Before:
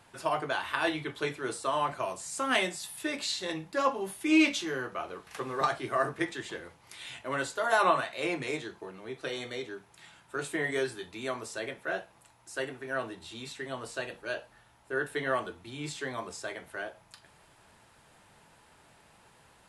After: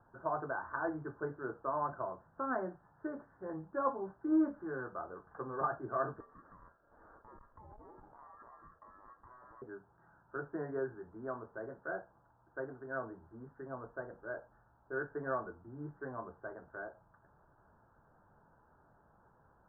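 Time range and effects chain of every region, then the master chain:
6.20–9.62 s: compression 10:1, threshold -40 dBFS + ring modulator 1.5 kHz + transformer saturation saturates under 400 Hz
whole clip: steep low-pass 1.6 kHz 96 dB/octave; bass shelf 76 Hz +6.5 dB; trim -6 dB

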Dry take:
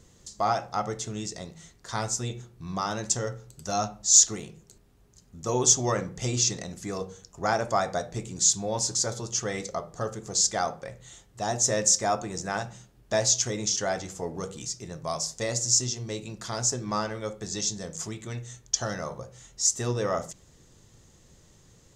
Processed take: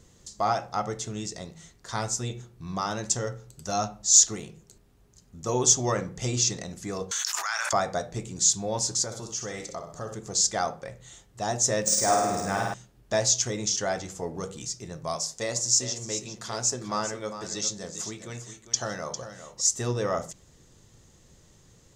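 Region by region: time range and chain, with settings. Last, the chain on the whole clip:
7.11–7.73 s: high-pass 1.3 kHz 24 dB/octave + level flattener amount 100%
9.04–10.14 s: flutter echo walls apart 10.8 m, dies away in 0.4 s + compression 1.5:1, threshold -40 dBFS + treble shelf 8.5 kHz +5 dB
11.82–12.74 s: short-mantissa float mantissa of 4-bit + flutter echo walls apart 8.9 m, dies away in 1.2 s + decimation joined by straight lines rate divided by 3×
15.16–19.61 s: bass shelf 140 Hz -9 dB + delay 402 ms -11 dB
whole clip: none

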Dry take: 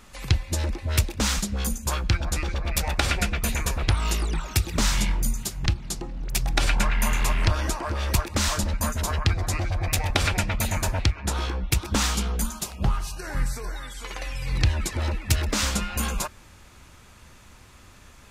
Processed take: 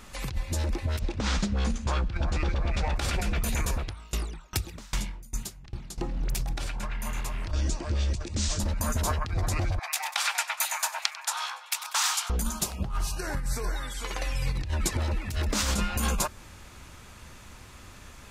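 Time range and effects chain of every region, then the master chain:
0.99–2.96 s: CVSD coder 64 kbps + Gaussian low-pass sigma 1.5 samples
3.73–5.98 s: compression 4:1, threshold -23 dBFS + sawtooth tremolo in dB decaying 2.5 Hz, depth 28 dB
7.51–8.60 s: steep low-pass 8 kHz + peaking EQ 1.1 kHz -15 dB 2.1 oct
9.79–12.30 s: steep high-pass 820 Hz + feedback delay 96 ms, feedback 55%, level -18 dB
whole clip: dynamic bell 2.3 kHz, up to -3 dB, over -42 dBFS, Q 0.83; compressor with a negative ratio -27 dBFS, ratio -1

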